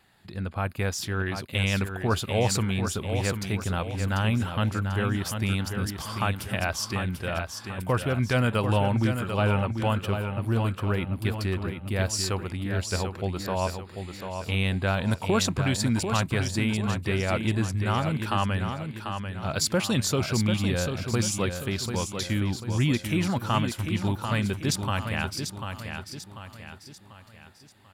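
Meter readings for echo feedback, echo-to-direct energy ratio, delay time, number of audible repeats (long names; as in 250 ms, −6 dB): 43%, −6.0 dB, 742 ms, 4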